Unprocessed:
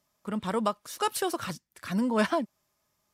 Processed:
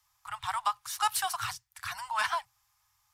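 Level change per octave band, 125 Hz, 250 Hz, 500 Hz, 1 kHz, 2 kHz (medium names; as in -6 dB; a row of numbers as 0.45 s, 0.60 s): -13.5 dB, under -35 dB, -18.0 dB, +1.5 dB, +1.5 dB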